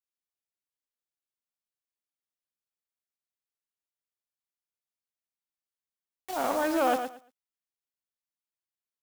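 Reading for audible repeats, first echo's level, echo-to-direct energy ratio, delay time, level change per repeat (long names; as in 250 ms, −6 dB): 2, −8.0 dB, −8.0 dB, 114 ms, −14.5 dB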